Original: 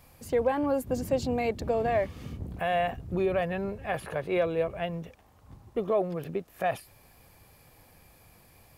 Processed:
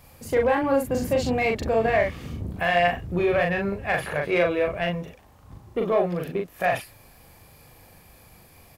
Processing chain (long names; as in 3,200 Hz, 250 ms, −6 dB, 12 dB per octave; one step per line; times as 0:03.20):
dynamic equaliser 2,000 Hz, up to +8 dB, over −48 dBFS, Q 1.1
in parallel at −5 dB: soft clipping −25.5 dBFS, distortion −10 dB
on the sum: double-tracking delay 40 ms −3 dB